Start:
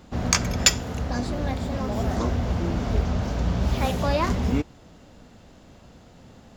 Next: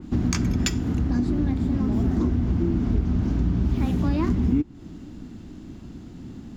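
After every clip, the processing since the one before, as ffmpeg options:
ffmpeg -i in.wav -af "lowshelf=frequency=410:width_type=q:width=3:gain=8.5,acompressor=threshold=-21dB:ratio=3,adynamicequalizer=threshold=0.00447:dfrequency=2900:dqfactor=0.7:tfrequency=2900:tqfactor=0.7:attack=5:release=100:ratio=0.375:range=2.5:mode=cutabove:tftype=highshelf" out.wav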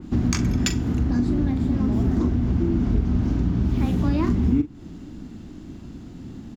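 ffmpeg -i in.wav -filter_complex "[0:a]asplit=2[link_01][link_02];[link_02]adelay=42,volume=-11.5dB[link_03];[link_01][link_03]amix=inputs=2:normalize=0,volume=1dB" out.wav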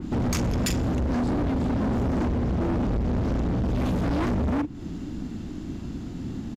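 ffmpeg -i in.wav -af "volume=27.5dB,asoftclip=hard,volume=-27.5dB,aresample=32000,aresample=44100,volume=4.5dB" out.wav

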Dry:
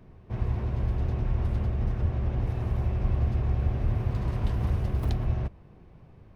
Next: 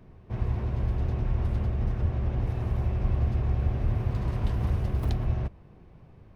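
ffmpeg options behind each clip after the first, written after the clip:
ffmpeg -i in.wav -af anull out.wav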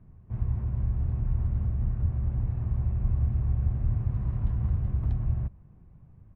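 ffmpeg -i in.wav -af "firequalizer=gain_entry='entry(130,0);entry(400,-13);entry(1100,-9);entry(4600,-26)':delay=0.05:min_phase=1" out.wav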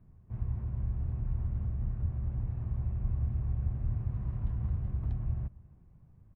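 ffmpeg -i in.wav -filter_complex "[0:a]asplit=2[link_01][link_02];[link_02]adelay=268.2,volume=-23dB,highshelf=frequency=4000:gain=-6.04[link_03];[link_01][link_03]amix=inputs=2:normalize=0,volume=-5.5dB" out.wav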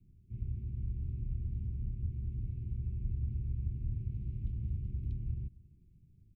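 ffmpeg -i in.wav -af "asuperstop=centerf=950:order=20:qfactor=0.53,volume=-4dB" out.wav

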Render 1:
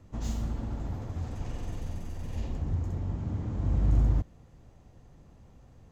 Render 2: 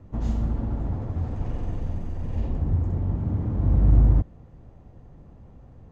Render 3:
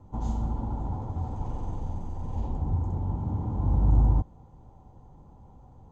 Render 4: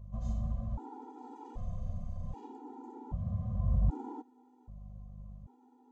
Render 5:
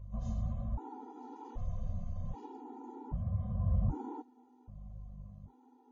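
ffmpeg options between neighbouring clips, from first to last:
ffmpeg -i in.wav -af "lowpass=frequency=1000:poles=1,volume=7dB" out.wav
ffmpeg -i in.wav -af "superequalizer=9b=3.16:11b=0.398:12b=0.501:15b=1.78,volume=-4dB" out.wav
ffmpeg -i in.wav -af "aeval=exprs='val(0)+0.00891*(sin(2*PI*50*n/s)+sin(2*PI*2*50*n/s)/2+sin(2*PI*3*50*n/s)/3+sin(2*PI*4*50*n/s)/4+sin(2*PI*5*50*n/s)/5)':channel_layout=same,afftfilt=real='re*gt(sin(2*PI*0.64*pts/sr)*(1-2*mod(floor(b*sr/1024/250),2)),0)':imag='im*gt(sin(2*PI*0.64*pts/sr)*(1-2*mod(floor(b*sr/1024/250),2)),0)':win_size=1024:overlap=0.75,volume=-5dB" out.wav
ffmpeg -i in.wav -af "flanger=delay=2.1:depth=9.3:regen=-49:speed=1.2:shape=sinusoidal,volume=4dB" -ar 16000 -c:a wmav2 -b:a 32k out.wma

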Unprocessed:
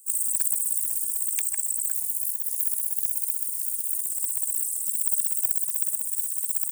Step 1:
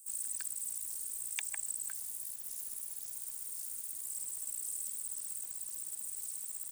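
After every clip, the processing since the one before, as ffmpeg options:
ffmpeg -i in.wav -filter_complex "[0:a]lowshelf=frequency=140:gain=9,acrossover=split=6100[link_01][link_02];[link_02]acompressor=threshold=-33dB:ratio=4:attack=1:release=60[link_03];[link_01][link_03]amix=inputs=2:normalize=0,highshelf=frequency=7900:gain=-6.5" out.wav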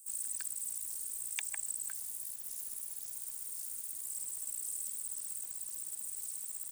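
ffmpeg -i in.wav -af anull out.wav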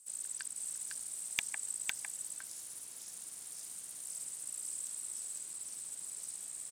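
ffmpeg -i in.wav -filter_complex "[0:a]highpass=120,lowpass=7300,asplit=2[link_01][link_02];[link_02]acrusher=bits=3:mix=0:aa=0.000001,volume=-7dB[link_03];[link_01][link_03]amix=inputs=2:normalize=0,aecho=1:1:505:0.708,volume=2.5dB" out.wav

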